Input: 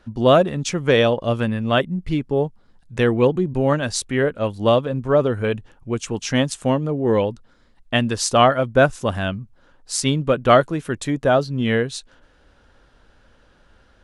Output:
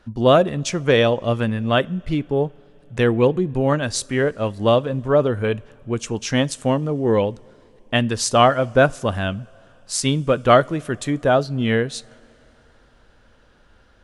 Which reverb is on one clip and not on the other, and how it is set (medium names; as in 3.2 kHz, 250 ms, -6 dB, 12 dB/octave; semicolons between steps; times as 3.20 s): two-slope reverb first 0.31 s, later 3.8 s, from -18 dB, DRR 19.5 dB